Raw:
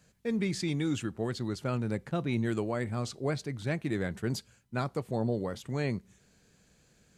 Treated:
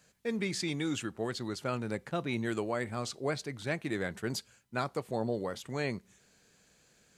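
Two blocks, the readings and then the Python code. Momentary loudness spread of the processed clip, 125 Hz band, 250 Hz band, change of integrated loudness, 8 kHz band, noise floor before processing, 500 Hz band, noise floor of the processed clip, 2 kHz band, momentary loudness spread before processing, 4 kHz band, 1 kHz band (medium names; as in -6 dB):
4 LU, -6.5 dB, -3.5 dB, -2.0 dB, +2.0 dB, -66 dBFS, -0.5 dB, -66 dBFS, +2.0 dB, 4 LU, +2.0 dB, +1.0 dB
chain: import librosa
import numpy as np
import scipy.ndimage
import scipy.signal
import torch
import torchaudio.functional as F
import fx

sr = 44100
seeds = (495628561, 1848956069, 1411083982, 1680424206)

y = fx.low_shelf(x, sr, hz=270.0, db=-10.5)
y = y * 10.0 ** (2.0 / 20.0)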